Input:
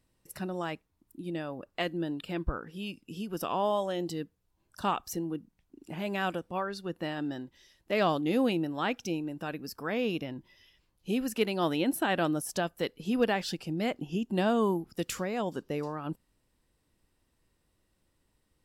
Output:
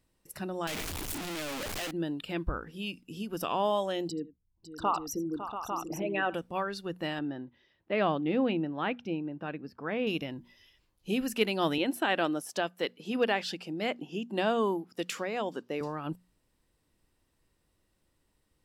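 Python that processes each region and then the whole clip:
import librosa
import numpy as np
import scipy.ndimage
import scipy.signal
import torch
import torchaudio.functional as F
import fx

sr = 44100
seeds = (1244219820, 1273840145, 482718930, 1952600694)

y = fx.chain(x, sr, fx.clip_1bit(),
    fx.high_shelf(hz=3700.0, db=6.5),
    fx.doppler_dist(depth_ms=0.5), at=(0.67, 1.91))
y = fx.chain(y, sr, fx.envelope_sharpen(power=2.0),
    fx.echo_multitap(ms=(81, 554, 688, 849), db=(-18.5, -11.0, -10.0, -6.5)), at=(4.08, 6.34))
y = fx.chain(y, sr, fx.highpass(hz=80.0, slope=12),
    fx.air_absorb(metres=370.0), at=(7.19, 10.07))
y = fx.chain(y, sr, fx.highpass(hz=250.0, slope=12),
    fx.high_shelf(hz=7900.0, db=-9.0), at=(11.78, 15.81))
y = fx.hum_notches(y, sr, base_hz=60, count=4)
y = fx.dynamic_eq(y, sr, hz=2700.0, q=1.1, threshold_db=-48.0, ratio=4.0, max_db=4)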